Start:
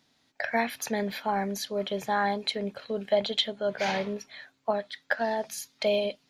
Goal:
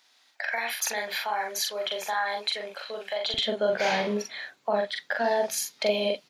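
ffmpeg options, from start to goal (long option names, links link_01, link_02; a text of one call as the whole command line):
ffmpeg -i in.wav -filter_complex "[0:a]alimiter=limit=-22.5dB:level=0:latency=1:release=97,asetnsamples=nb_out_samples=441:pad=0,asendcmd='3.34 highpass f 210',highpass=860,asplit=2[link_01][link_02];[link_02]adelay=43,volume=-3dB[link_03];[link_01][link_03]amix=inputs=2:normalize=0,volume=6dB" out.wav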